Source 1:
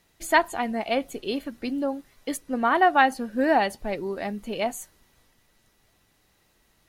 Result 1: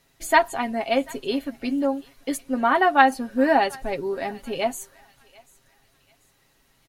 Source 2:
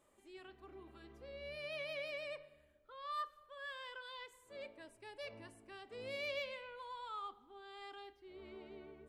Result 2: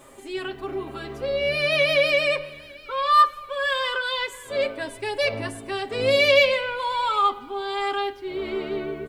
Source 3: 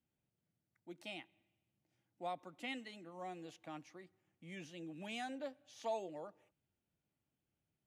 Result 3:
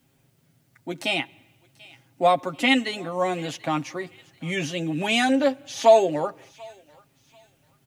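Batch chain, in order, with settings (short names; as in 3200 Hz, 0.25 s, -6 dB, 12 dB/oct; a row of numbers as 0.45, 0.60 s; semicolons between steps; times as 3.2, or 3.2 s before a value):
comb 7.4 ms, depth 57%; thinning echo 0.738 s, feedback 41%, high-pass 1200 Hz, level -21.5 dB; match loudness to -23 LUFS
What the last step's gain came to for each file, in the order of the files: +0.5, +23.0, +22.5 dB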